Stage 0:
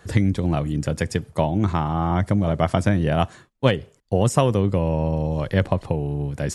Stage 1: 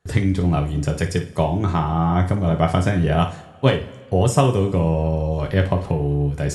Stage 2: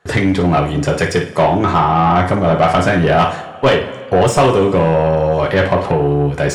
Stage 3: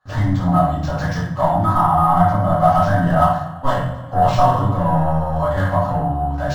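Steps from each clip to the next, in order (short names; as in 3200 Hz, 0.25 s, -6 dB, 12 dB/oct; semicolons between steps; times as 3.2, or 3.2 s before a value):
flutter echo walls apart 9.5 m, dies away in 0.26 s; two-slope reverb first 0.24 s, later 1.6 s, from -19 dB, DRR 3.5 dB; gate with hold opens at -38 dBFS
overdrive pedal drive 24 dB, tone 1900 Hz, clips at -1.5 dBFS
fixed phaser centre 1000 Hz, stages 4; shoebox room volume 78 m³, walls mixed, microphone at 2.2 m; decimation joined by straight lines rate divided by 4×; gain -11.5 dB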